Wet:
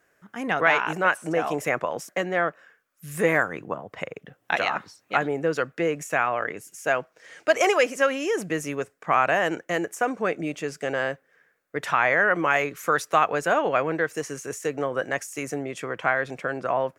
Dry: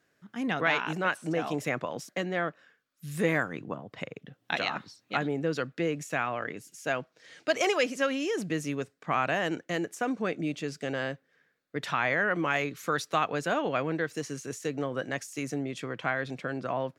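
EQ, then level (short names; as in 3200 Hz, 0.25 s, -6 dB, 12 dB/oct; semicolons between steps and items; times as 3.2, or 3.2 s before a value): graphic EQ 125/250/4000 Hz -8/-8/-11 dB; +8.5 dB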